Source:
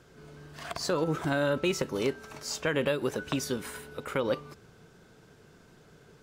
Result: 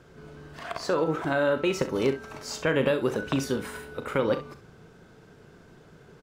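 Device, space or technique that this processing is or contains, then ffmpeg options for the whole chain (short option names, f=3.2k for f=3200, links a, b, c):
behind a face mask: -filter_complex "[0:a]asettb=1/sr,asplit=3[a][b][c];[a]atrim=end=0.594[d];[b]atrim=start=0.59:end=1.74,asetpts=PTS-STARTPTS,afade=t=in:d=0.004:c=qsin,afade=t=out:st=1.146:d=0.004:c=qsin,bass=f=250:g=-7,treble=f=4k:g=-4[e];[c]atrim=start=1.736[f];[d][e]acrossfade=d=0.004:c1=hsin:c2=qsin[g];[g][f]acrossfade=d=0.004:c1=qsin:c2=hsin,highshelf=f=3.4k:g=-7.5,aecho=1:1:37|66:0.266|0.224,volume=4dB"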